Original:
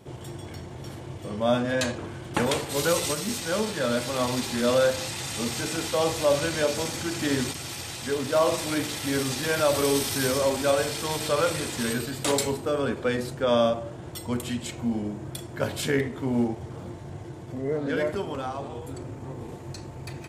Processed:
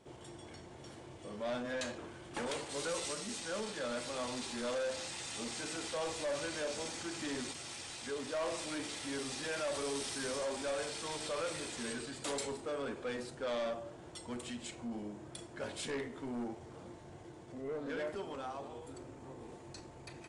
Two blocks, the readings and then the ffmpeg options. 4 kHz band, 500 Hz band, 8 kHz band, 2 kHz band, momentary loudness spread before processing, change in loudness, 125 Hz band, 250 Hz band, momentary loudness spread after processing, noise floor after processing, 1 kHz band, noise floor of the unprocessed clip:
-11.5 dB, -13.5 dB, -11.0 dB, -11.5 dB, 15 LU, -13.0 dB, -19.0 dB, -14.0 dB, 14 LU, -52 dBFS, -13.0 dB, -40 dBFS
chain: -af "asoftclip=type=tanh:threshold=-23.5dB,equalizer=f=110:w=0.87:g=-9.5,volume=-8.5dB" -ar 22050 -c:a aac -b:a 48k

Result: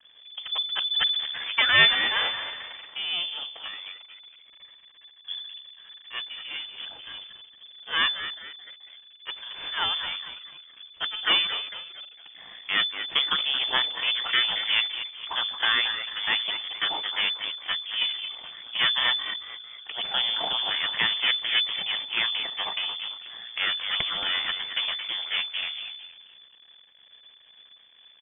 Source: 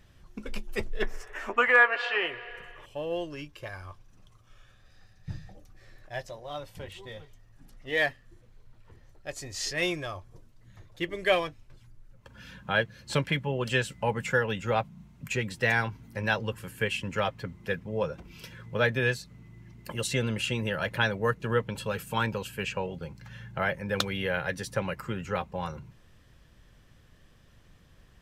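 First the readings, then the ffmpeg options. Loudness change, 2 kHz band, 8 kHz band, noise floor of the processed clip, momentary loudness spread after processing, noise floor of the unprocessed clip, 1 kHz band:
+4.5 dB, +1.5 dB, under -35 dB, -55 dBFS, 18 LU, -58 dBFS, -1.0 dB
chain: -filter_complex "[0:a]asplit=5[a][b][c][d][e];[b]adelay=224,afreqshift=-87,volume=-10dB[f];[c]adelay=448,afreqshift=-174,volume=-18dB[g];[d]adelay=672,afreqshift=-261,volume=-25.9dB[h];[e]adelay=896,afreqshift=-348,volume=-33.9dB[i];[a][f][g][h][i]amix=inputs=5:normalize=0,aeval=exprs='max(val(0),0)':c=same,lowpass=f=3k:t=q:w=0.5098,lowpass=f=3k:t=q:w=0.6013,lowpass=f=3k:t=q:w=0.9,lowpass=f=3k:t=q:w=2.563,afreqshift=-3500,volume=5.5dB"

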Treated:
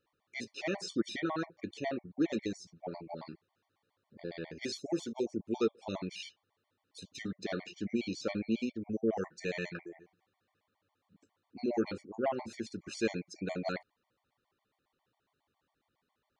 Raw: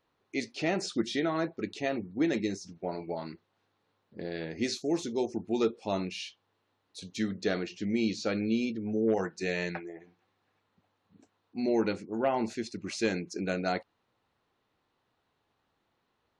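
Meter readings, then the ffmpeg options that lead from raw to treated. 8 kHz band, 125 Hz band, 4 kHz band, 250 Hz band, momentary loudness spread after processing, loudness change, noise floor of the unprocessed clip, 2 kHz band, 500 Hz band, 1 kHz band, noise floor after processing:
-6.0 dB, -5.0 dB, -5.5 dB, -5.0 dB, 12 LU, -5.0 dB, -78 dBFS, -5.5 dB, -5.0 dB, -6.0 dB, -83 dBFS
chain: -af "afftfilt=real='re*gt(sin(2*PI*7.3*pts/sr)*(1-2*mod(floor(b*sr/1024/600),2)),0)':imag='im*gt(sin(2*PI*7.3*pts/sr)*(1-2*mod(floor(b*sr/1024/600),2)),0)':win_size=1024:overlap=0.75,volume=-2dB"

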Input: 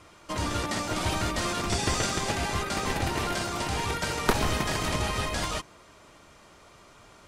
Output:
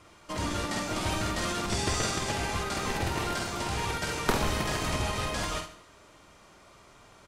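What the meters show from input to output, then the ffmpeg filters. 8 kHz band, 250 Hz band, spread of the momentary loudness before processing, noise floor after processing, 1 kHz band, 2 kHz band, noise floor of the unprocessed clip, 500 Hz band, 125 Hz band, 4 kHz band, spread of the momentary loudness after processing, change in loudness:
-1.5 dB, -1.5 dB, 4 LU, -56 dBFS, -2.0 dB, -2.0 dB, -54 dBFS, -1.5 dB, -2.0 dB, -2.0 dB, 4 LU, -2.0 dB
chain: -filter_complex "[0:a]asplit=2[a][b];[b]adelay=48,volume=-6dB[c];[a][c]amix=inputs=2:normalize=0,aecho=1:1:73|146|219|292|365:0.237|0.109|0.0502|0.0231|0.0106,volume=-3dB"

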